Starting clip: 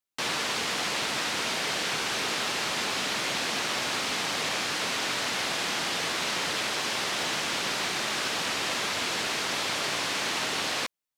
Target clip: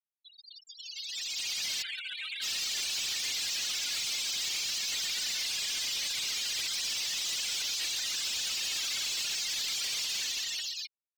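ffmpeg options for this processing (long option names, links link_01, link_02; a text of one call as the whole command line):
ffmpeg -i in.wav -filter_complex "[0:a]asplit=2[link_01][link_02];[link_02]aecho=0:1:122:0.447[link_03];[link_01][link_03]amix=inputs=2:normalize=0,dynaudnorm=framelen=330:gausssize=7:maxgain=8dB,asettb=1/sr,asplit=3[link_04][link_05][link_06];[link_04]atrim=end=1.824[link_07];[link_05]atrim=start=1.82:end=2.42,asetpts=PTS-STARTPTS,afade=type=in:duration=0.004:curve=qsin,afade=type=out:start_time=0.596:duration=0.004:curve=qsin,highpass=630,lowpass=3400[link_08];[link_06]atrim=start=2.416[link_09];[link_07][link_08]acrossfade=duration=0.004:curve1=hsin:curve2=qsin[link_10];[link_10][link_09]acrossfade=duration=0.004:curve1=qsin:curve2=hsin,aderivative,asplit=2[link_11][link_12];[link_12]aecho=0:1:148|296|444:0.237|0.0569|0.0137[link_13];[link_11][link_13]amix=inputs=2:normalize=0,afftfilt=real='re*gte(hypot(re,im),0.0562)':imag='im*gte(hypot(re,im),0.0562)':win_size=1024:overlap=0.75,asoftclip=type=tanh:threshold=-31dB,volume=1.5dB" out.wav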